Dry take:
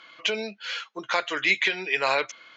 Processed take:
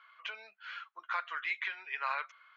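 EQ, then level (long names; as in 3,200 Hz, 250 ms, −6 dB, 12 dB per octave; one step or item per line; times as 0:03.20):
four-pole ladder band-pass 1,400 Hz, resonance 50%
0.0 dB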